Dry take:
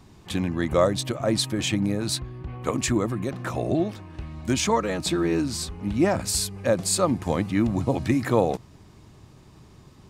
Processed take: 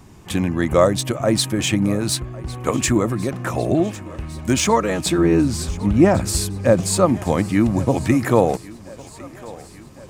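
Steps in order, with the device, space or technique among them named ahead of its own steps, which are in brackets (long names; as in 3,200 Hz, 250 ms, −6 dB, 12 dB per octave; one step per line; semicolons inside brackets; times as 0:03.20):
exciter from parts (in parallel at −4 dB: high-pass filter 3,800 Hz 24 dB per octave + soft clipping −30.5 dBFS, distortion −6 dB)
0:05.18–0:07.06: on the sum: spectral tilt −1.5 dB per octave
feedback echo with a high-pass in the loop 1,104 ms, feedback 71%, high-pass 280 Hz, level −19.5 dB
level +5.5 dB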